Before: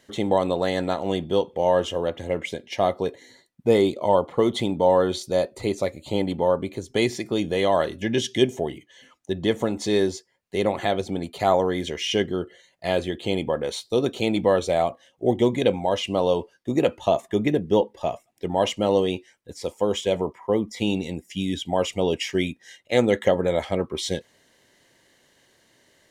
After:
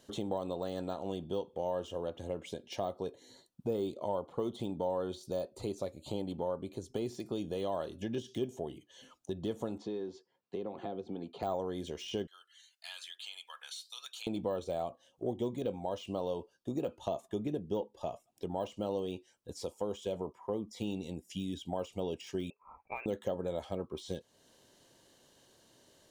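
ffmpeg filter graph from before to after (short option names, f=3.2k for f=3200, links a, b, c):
-filter_complex "[0:a]asettb=1/sr,asplit=3[a][b][c];[a]atrim=end=9.784[d];[b]atrim=start=9.78:end=11.43,asetpts=PTS-STARTPTS,afade=t=in:d=0.004:c=qsin,afade=t=out:st=1.646:d=0.004:c=qsin,highpass=170,lowpass=3.1k,bandreject=f=600:w=6.7,acrossover=split=640|1400[e][f][g];[e]acompressor=threshold=-27dB:ratio=4[h];[f]acompressor=threshold=-42dB:ratio=4[i];[g]acompressor=threshold=-47dB:ratio=4[j];[h][i][j]amix=inputs=3:normalize=0[k];[c]atrim=start=11.426[l];[d][k]acrossfade=d=0.004:c1=hsin:c2=qsin[m];[m][l]acrossfade=d=0.004:c1=qsin:c2=hsin,asettb=1/sr,asplit=3[n][o][p];[n]atrim=end=12.274[q];[o]atrim=start=12.27:end=14.27,asetpts=PTS-STARTPTS,afade=t=in:d=0.004:c=qsin,afade=t=out:st=1.996:d=0.004:c=qsin,highpass=f=1.5k:w=0.5412,highpass=f=1.5k:w=1.3066,aphaser=in_gain=1:out_gain=1:delay=1.4:decay=0.35:speed=1:type=sinusoidal,acompressor=threshold=-38dB:ratio=2:attack=3.2:release=140:knee=1:detection=peak[r];[p]atrim=start=14.266[s];[q][r]acrossfade=d=0.004:c1=hsin:c2=qsin[t];[t][s]acrossfade=d=0.004:c1=qsin:c2=hsin,asettb=1/sr,asplit=3[u][v][w];[u]atrim=end=22.504[x];[v]atrim=start=22.5:end=23.06,asetpts=PTS-STARTPTS,afade=t=in:d=0.004:c=qsin,afade=t=out:st=0.556:d=0.004:c=qsin,highpass=700,lowpass=f=2.5k:t=q:w=0.5098,lowpass=f=2.5k:t=q:w=0.6013,lowpass=f=2.5k:t=q:w=0.9,lowpass=f=2.5k:t=q:w=2.563,afreqshift=-2900[y];[w]atrim=start=23.056[z];[x][y]acrossfade=d=0.004:c1=hsin:c2=qsin[aa];[aa][z]acrossfade=d=0.004:c1=qsin:c2=hsin,deesser=0.9,equalizer=f=2k:t=o:w=0.47:g=-14.5,acompressor=threshold=-40dB:ratio=2,volume=-2dB"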